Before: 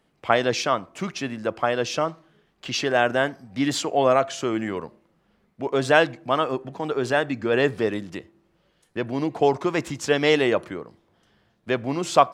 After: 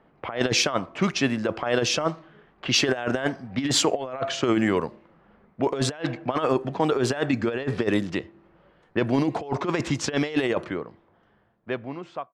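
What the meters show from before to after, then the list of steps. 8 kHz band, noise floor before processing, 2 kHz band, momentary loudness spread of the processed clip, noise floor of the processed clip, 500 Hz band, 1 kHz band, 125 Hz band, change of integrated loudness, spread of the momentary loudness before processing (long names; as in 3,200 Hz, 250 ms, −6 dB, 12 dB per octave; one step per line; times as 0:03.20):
+4.5 dB, −67 dBFS, −3.5 dB, 11 LU, −62 dBFS, −4.0 dB, −6.0 dB, +2.5 dB, −2.0 dB, 13 LU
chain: fade-out on the ending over 2.37 s
compressor whose output falls as the input rises −25 dBFS, ratio −0.5
low-pass that shuts in the quiet parts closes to 1,100 Hz, open at −21 dBFS
one half of a high-frequency compander encoder only
level +2.5 dB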